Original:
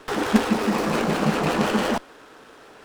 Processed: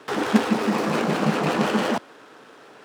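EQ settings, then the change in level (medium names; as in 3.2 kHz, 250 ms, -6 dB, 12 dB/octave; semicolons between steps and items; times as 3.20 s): high-pass 110 Hz 24 dB/octave; treble shelf 8.3 kHz -5.5 dB; 0.0 dB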